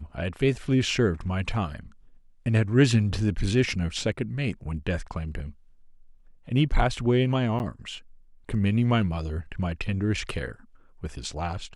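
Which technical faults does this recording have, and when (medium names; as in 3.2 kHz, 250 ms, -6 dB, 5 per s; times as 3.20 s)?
7.59–7.60 s: dropout 9.7 ms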